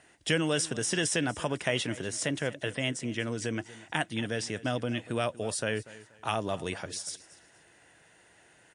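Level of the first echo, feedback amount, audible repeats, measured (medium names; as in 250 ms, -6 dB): -18.5 dB, 28%, 2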